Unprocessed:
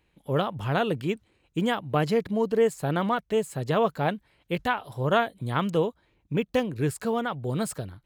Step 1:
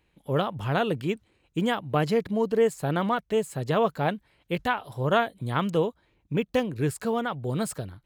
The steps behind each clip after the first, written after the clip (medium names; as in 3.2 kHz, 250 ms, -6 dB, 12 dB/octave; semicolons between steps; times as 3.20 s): no audible change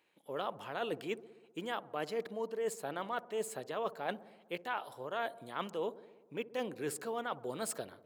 high-pass 370 Hz 12 dB/octave; reverse; compression 6:1, threshold -32 dBFS, peak gain reduction 14 dB; reverse; feedback echo behind a low-pass 63 ms, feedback 71%, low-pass 820 Hz, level -16 dB; trim -2 dB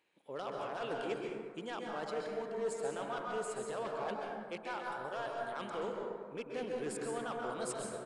overload inside the chain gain 31 dB; plate-style reverb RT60 1.8 s, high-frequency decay 0.35×, pre-delay 115 ms, DRR -1 dB; resampled via 22.05 kHz; trim -3 dB